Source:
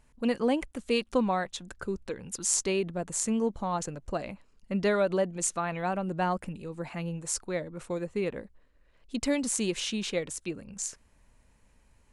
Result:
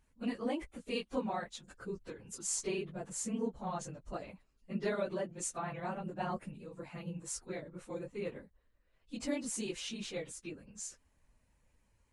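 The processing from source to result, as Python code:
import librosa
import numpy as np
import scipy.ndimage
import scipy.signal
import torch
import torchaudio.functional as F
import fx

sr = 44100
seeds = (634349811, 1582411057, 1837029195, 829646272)

y = fx.phase_scramble(x, sr, seeds[0], window_ms=50)
y = y * librosa.db_to_amplitude(-9.0)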